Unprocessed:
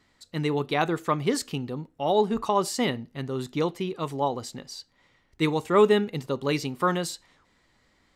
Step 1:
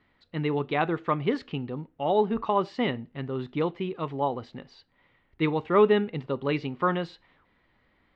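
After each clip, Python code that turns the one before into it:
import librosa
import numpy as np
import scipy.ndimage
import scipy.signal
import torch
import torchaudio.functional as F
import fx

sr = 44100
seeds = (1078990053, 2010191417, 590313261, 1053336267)

y = scipy.signal.sosfilt(scipy.signal.butter(4, 3200.0, 'lowpass', fs=sr, output='sos'), x)
y = y * 10.0 ** (-1.0 / 20.0)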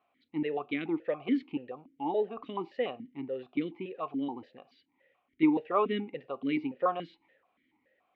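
y = fx.vowel_held(x, sr, hz=7.0)
y = y * 10.0 ** (6.0 / 20.0)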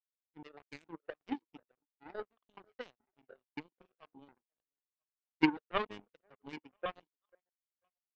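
y = fx.echo_stepped(x, sr, ms=492, hz=490.0, octaves=0.7, feedback_pct=70, wet_db=-9.5)
y = fx.power_curve(y, sr, exponent=3.0)
y = y * 10.0 ** (5.0 / 20.0)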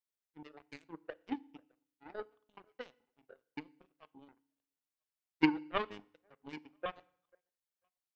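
y = fx.rev_fdn(x, sr, rt60_s=0.6, lf_ratio=1.25, hf_ratio=1.0, size_ms=20.0, drr_db=19.0)
y = y * 10.0 ** (-1.0 / 20.0)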